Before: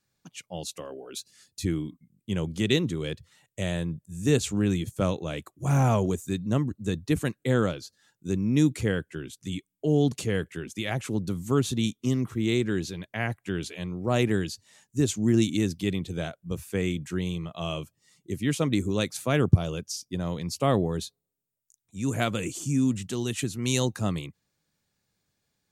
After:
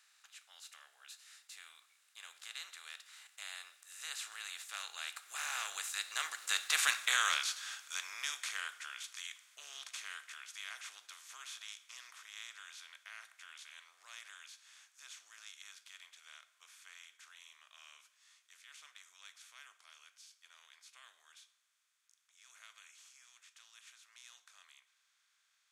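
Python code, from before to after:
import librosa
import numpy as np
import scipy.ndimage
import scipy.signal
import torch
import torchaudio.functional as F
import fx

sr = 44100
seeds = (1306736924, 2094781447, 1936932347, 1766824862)

y = fx.bin_compress(x, sr, power=0.4)
y = fx.doppler_pass(y, sr, speed_mps=19, closest_m=8.7, pass_at_s=6.93)
y = scipy.signal.sosfilt(scipy.signal.butter(4, 1300.0, 'highpass', fs=sr, output='sos'), y)
y = 10.0 ** (-14.0 / 20.0) * np.tanh(y / 10.0 ** (-14.0 / 20.0))
y = fx.rev_plate(y, sr, seeds[0], rt60_s=0.72, hf_ratio=0.8, predelay_ms=0, drr_db=10.5)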